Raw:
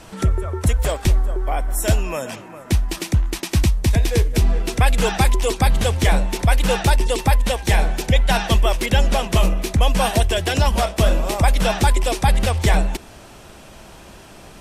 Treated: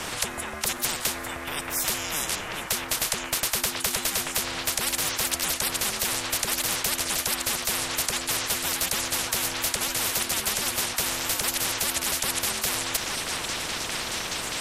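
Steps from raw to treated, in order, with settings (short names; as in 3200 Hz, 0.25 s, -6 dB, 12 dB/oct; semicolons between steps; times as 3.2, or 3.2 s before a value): ring modulator 300 Hz; delay with a stepping band-pass 0.627 s, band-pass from 1200 Hz, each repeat 0.7 oct, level -6 dB; spectral compressor 10:1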